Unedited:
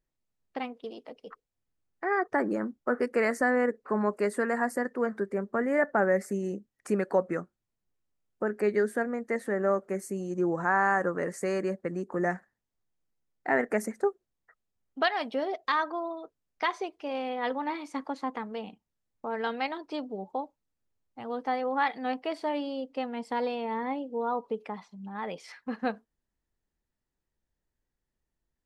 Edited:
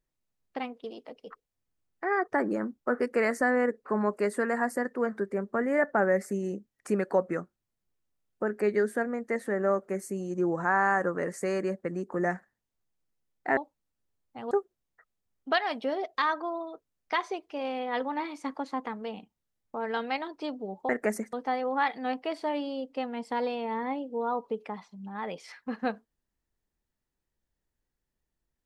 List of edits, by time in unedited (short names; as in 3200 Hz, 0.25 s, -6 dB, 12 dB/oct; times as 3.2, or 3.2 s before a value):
13.57–14.01 swap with 20.39–21.33